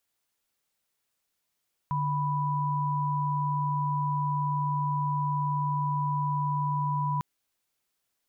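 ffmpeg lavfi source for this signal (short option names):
-f lavfi -i "aevalsrc='0.0398*(sin(2*PI*146.83*t)+sin(2*PI*987.77*t))':d=5.3:s=44100"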